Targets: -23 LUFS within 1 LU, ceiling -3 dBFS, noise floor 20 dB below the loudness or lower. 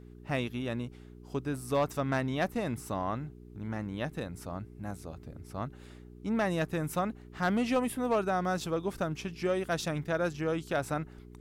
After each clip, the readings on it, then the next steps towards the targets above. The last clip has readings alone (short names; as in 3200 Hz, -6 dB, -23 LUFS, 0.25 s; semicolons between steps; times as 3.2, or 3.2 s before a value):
clipped 0.3%; flat tops at -21.0 dBFS; hum 60 Hz; harmonics up to 420 Hz; hum level -49 dBFS; loudness -33.5 LUFS; peak -21.0 dBFS; loudness target -23.0 LUFS
-> clip repair -21 dBFS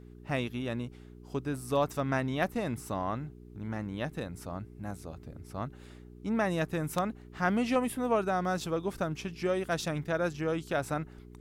clipped 0.0%; hum 60 Hz; harmonics up to 420 Hz; hum level -49 dBFS
-> de-hum 60 Hz, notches 7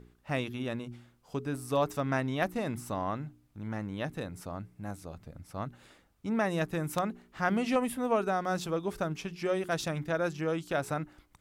hum none; loudness -33.0 LUFS; peak -12.0 dBFS; loudness target -23.0 LUFS
-> gain +10 dB; limiter -3 dBFS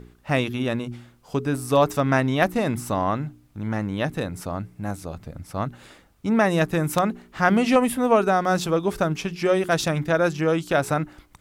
loudness -23.5 LUFS; peak -3.0 dBFS; noise floor -56 dBFS